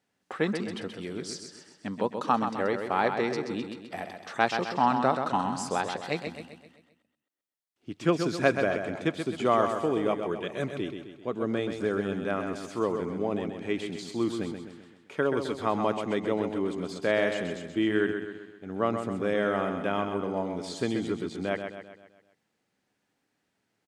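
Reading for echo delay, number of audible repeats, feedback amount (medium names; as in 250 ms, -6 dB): 130 ms, 5, 49%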